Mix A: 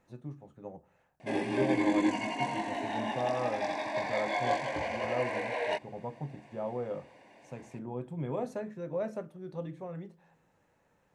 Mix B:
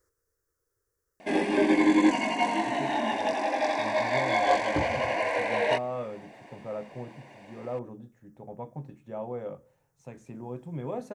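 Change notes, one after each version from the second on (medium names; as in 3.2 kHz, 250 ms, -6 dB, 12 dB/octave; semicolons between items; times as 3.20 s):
first voice: entry +2.55 s; second voice +11.5 dB; background +6.5 dB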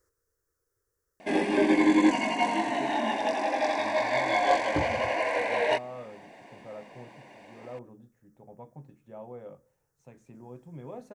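first voice -7.5 dB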